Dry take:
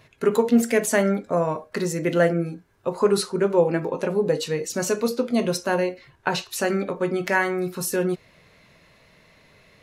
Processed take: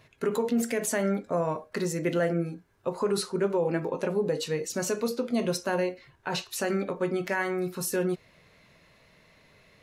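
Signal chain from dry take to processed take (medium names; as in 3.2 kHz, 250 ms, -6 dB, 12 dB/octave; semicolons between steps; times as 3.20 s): peak limiter -14 dBFS, peak gain reduction 7 dB; trim -4 dB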